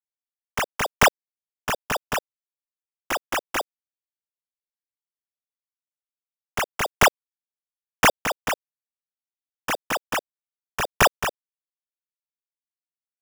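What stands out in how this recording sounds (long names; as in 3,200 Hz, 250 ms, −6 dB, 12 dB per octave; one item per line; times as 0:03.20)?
a quantiser's noise floor 8 bits, dither none
chopped level 1 Hz, depth 65%, duty 10%
aliases and images of a low sample rate 4,200 Hz, jitter 0%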